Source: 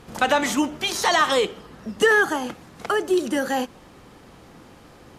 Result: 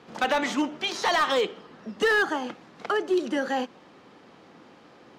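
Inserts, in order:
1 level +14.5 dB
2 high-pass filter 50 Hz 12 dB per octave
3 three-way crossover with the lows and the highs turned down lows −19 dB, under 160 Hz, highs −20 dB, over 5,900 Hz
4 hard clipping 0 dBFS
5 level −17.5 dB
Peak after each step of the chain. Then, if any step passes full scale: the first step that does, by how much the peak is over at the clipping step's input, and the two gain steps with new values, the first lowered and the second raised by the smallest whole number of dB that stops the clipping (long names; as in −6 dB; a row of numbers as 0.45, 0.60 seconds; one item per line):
+8.0, +8.0, +7.0, 0.0, −17.5 dBFS
step 1, 7.0 dB
step 1 +7.5 dB, step 5 −10.5 dB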